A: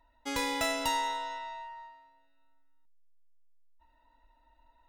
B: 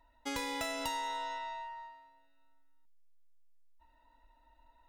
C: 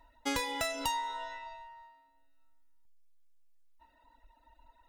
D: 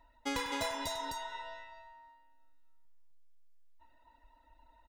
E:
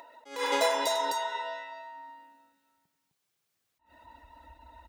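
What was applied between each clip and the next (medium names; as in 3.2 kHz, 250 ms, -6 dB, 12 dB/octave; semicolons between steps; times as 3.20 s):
compression 6:1, threshold -34 dBFS, peak gain reduction 7.5 dB
reverb removal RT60 1.4 s; trim +5.5 dB
peaking EQ 14 kHz -5 dB 1.5 oct; spectral replace 0.40–1.13 s, 690–3200 Hz both; multi-tap echo 98/258 ms -12/-3 dB; trim -2.5 dB
in parallel at -0.5 dB: upward compressor, threshold -45 dBFS; on the sum: high-pass sweep 450 Hz -> 71 Hz, 1.18–4.32 s; attacks held to a fixed rise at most 140 dB/s; trim +2 dB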